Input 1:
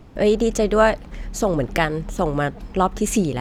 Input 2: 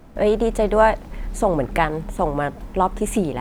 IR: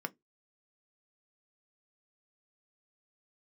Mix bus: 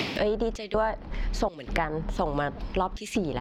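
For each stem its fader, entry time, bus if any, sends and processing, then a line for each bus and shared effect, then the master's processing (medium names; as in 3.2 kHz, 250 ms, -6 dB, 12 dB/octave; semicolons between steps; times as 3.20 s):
-6.5 dB, 0.00 s, no send, high-pass 170 Hz 6 dB/octave; high-order bell 3.3 kHz +14.5 dB; three bands compressed up and down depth 100%; auto duck -12 dB, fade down 0.30 s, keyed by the second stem
0.0 dB, 0.5 ms, no send, inverse Chebyshev low-pass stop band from 6.6 kHz, stop band 60 dB; trance gate ".xx.xxxx.xxxxxxx" 81 bpm -60 dB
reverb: none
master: compression 6:1, threshold -23 dBFS, peak gain reduction 12.5 dB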